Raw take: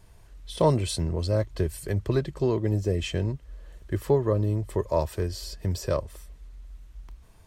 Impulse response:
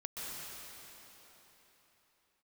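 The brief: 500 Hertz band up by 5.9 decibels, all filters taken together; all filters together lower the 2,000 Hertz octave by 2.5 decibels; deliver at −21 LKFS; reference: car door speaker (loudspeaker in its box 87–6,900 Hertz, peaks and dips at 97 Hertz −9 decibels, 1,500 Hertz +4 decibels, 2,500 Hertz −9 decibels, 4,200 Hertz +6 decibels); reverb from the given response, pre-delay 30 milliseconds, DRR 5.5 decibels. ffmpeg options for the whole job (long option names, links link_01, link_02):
-filter_complex "[0:a]equalizer=frequency=500:width_type=o:gain=7.5,equalizer=frequency=2000:width_type=o:gain=-4,asplit=2[link_01][link_02];[1:a]atrim=start_sample=2205,adelay=30[link_03];[link_02][link_03]afir=irnorm=-1:irlink=0,volume=-7dB[link_04];[link_01][link_04]amix=inputs=2:normalize=0,highpass=87,equalizer=frequency=97:width_type=q:width=4:gain=-9,equalizer=frequency=1500:width_type=q:width=4:gain=4,equalizer=frequency=2500:width_type=q:width=4:gain=-9,equalizer=frequency=4200:width_type=q:width=4:gain=6,lowpass=frequency=6900:width=0.5412,lowpass=frequency=6900:width=1.3066,volume=2.5dB"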